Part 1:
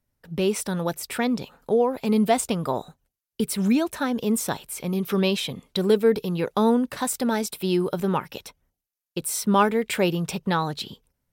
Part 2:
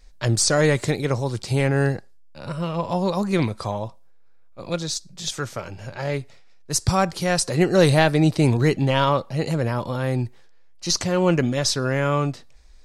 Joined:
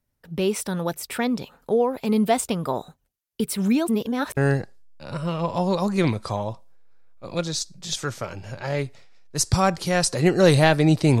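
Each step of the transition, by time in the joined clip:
part 1
3.88–4.37 reverse
4.37 switch to part 2 from 1.72 s

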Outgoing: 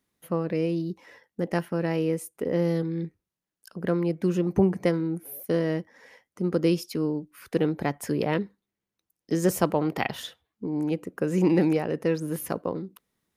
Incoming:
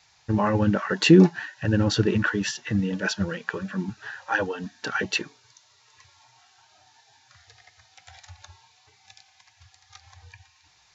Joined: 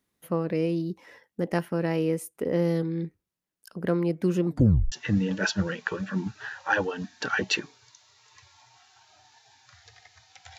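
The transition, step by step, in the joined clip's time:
outgoing
4.47 tape stop 0.45 s
4.92 switch to incoming from 2.54 s

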